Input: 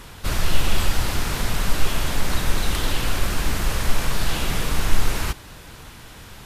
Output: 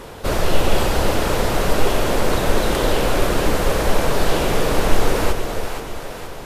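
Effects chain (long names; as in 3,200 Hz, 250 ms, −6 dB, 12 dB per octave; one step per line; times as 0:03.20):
parametric band 500 Hz +14.5 dB 1.8 octaves
on a send: echo with a time of its own for lows and highs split 430 Hz, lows 328 ms, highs 474 ms, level −7 dB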